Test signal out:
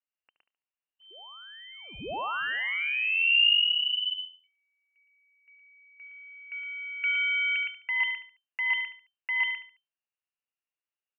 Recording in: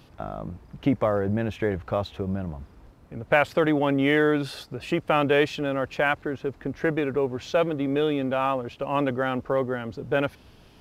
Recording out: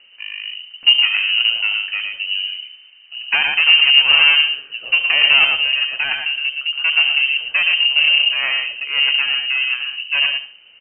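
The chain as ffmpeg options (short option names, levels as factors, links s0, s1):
-filter_complex "[0:a]asplit=2[s0][s1];[s1]aecho=0:1:115:0.631[s2];[s0][s2]amix=inputs=2:normalize=0,aeval=exprs='0.531*(cos(1*acos(clip(val(0)/0.531,-1,1)))-cos(1*PI/2))+0.188*(cos(4*acos(clip(val(0)/0.531,-1,1)))-cos(4*PI/2))+0.0237*(cos(6*acos(clip(val(0)/0.531,-1,1)))-cos(6*PI/2))+0.0188*(cos(7*acos(clip(val(0)/0.531,-1,1)))-cos(7*PI/2))':c=same,aeval=exprs='0.422*(abs(mod(val(0)/0.422+3,4)-2)-1)':c=same,equalizer=f=290:t=o:w=1.2:g=12,lowpass=f=2600:t=q:w=0.5098,lowpass=f=2600:t=q:w=0.6013,lowpass=f=2600:t=q:w=0.9,lowpass=f=2600:t=q:w=2.563,afreqshift=-3100,asplit=2[s3][s4];[s4]aecho=0:1:72|144|216:0.237|0.0783|0.0258[s5];[s3][s5]amix=inputs=2:normalize=0,volume=1.12"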